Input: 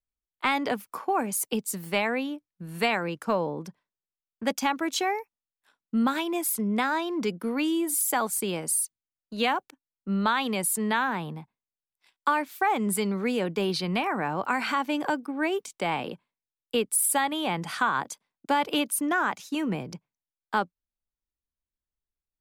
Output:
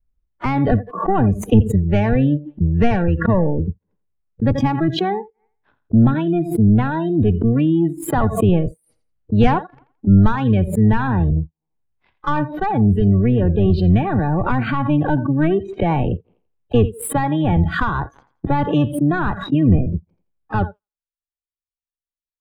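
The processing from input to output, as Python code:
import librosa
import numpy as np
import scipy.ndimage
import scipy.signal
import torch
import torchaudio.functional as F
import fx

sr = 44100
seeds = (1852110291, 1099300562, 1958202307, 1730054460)

p1 = fx.octave_divider(x, sr, octaves=1, level_db=-4.0)
p2 = fx.air_absorb(p1, sr, metres=330.0)
p3 = p2 + fx.echo_thinned(p2, sr, ms=84, feedback_pct=27, hz=240.0, wet_db=-14.5, dry=0)
p4 = fx.leveller(p3, sr, passes=2)
p5 = fx.rider(p4, sr, range_db=5, speed_s=0.5)
p6 = fx.riaa(p5, sr, side='playback')
p7 = fx.noise_reduce_blind(p6, sr, reduce_db=28)
y = fx.pre_swell(p7, sr, db_per_s=100.0)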